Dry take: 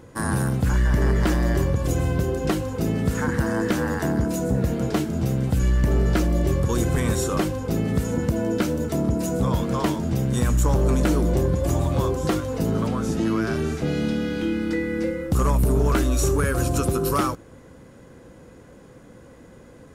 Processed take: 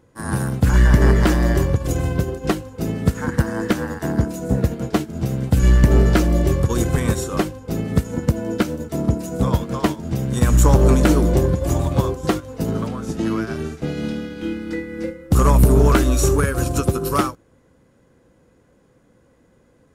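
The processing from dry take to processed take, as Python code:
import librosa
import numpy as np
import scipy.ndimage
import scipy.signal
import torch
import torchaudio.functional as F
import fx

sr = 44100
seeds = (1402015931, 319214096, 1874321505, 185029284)

y = fx.upward_expand(x, sr, threshold_db=-29.0, expansion=2.5)
y = y * 10.0 ** (9.0 / 20.0)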